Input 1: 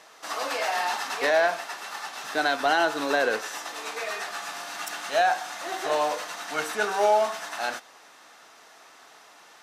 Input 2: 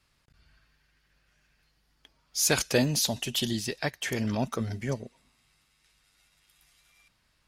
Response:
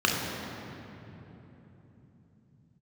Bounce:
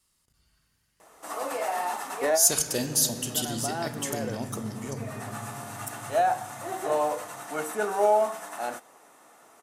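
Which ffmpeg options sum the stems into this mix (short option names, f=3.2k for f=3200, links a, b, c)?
-filter_complex "[0:a]tiltshelf=f=1.4k:g=7,bandreject=f=1.6k:w=16,adelay=1000,volume=-4.5dB[a];[1:a]equalizer=f=5.1k:t=o:w=1.1:g=7.5,volume=-7.5dB,asplit=3[b][c][d];[c]volume=-19dB[e];[d]apad=whole_len=468540[f];[a][f]sidechaincompress=threshold=-47dB:ratio=3:attack=45:release=390[g];[2:a]atrim=start_sample=2205[h];[e][h]afir=irnorm=-1:irlink=0[i];[g][b][i]amix=inputs=3:normalize=0,highshelf=f=6.6k:t=q:w=1.5:g=12"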